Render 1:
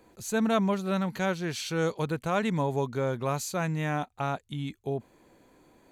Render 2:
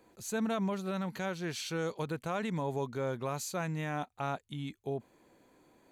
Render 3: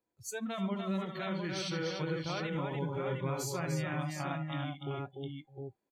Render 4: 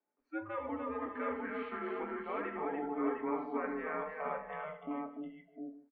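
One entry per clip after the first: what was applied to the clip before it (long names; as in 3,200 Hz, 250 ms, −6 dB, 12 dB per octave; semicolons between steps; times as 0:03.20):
low-shelf EQ 81 Hz −7.5 dB; brickwall limiter −21 dBFS, peak gain reduction 6 dB; level −4 dB
dynamic equaliser 800 Hz, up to −6 dB, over −47 dBFS, Q 0.82; multi-tap delay 76/146/295/613/709 ms −6/−19.5/−3.5/−11.5/−4 dB; noise reduction from a noise print of the clip's start 25 dB
single-tap delay 152 ms −17 dB; convolution reverb RT60 0.35 s, pre-delay 3 ms, DRR 3.5 dB; single-sideband voice off tune −120 Hz 450–2,200 Hz; level +1 dB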